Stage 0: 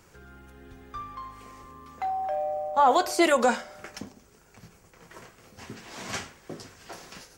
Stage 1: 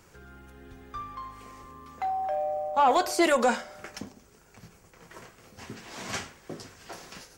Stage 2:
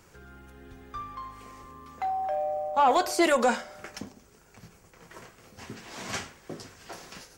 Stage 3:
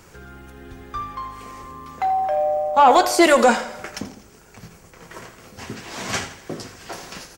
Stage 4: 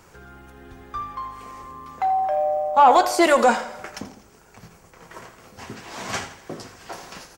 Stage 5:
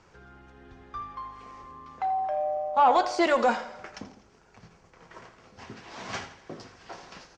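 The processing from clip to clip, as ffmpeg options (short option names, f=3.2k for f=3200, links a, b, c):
-af "asoftclip=type=tanh:threshold=-12.5dB"
-af anull
-af "aecho=1:1:83|166|249|332|415:0.2|0.0978|0.0479|0.0235|0.0115,volume=8.5dB"
-af "equalizer=f=900:t=o:w=1.4:g=4.5,volume=-4.5dB"
-af "lowpass=f=6k:w=0.5412,lowpass=f=6k:w=1.3066,volume=-6.5dB"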